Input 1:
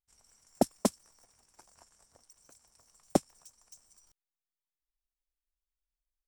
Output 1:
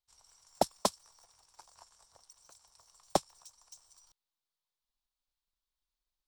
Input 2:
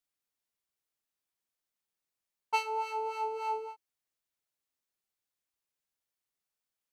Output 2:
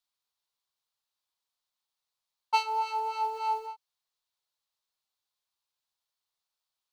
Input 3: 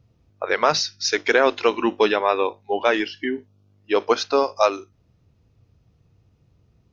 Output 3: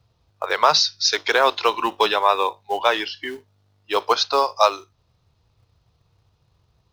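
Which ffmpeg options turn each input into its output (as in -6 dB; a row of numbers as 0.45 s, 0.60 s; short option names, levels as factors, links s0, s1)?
-filter_complex "[0:a]equalizer=f=250:t=o:w=1:g=-10,equalizer=f=1000:t=o:w=1:g=9,equalizer=f=2000:t=o:w=1:g=-3,equalizer=f=4000:t=o:w=1:g=11,acrossover=split=480|910[s0][s1][s2];[s0]acrusher=bits=3:mode=log:mix=0:aa=0.000001[s3];[s3][s1][s2]amix=inputs=3:normalize=0,volume=0.75"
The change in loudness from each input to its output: -2.0 LU, +3.5 LU, +1.5 LU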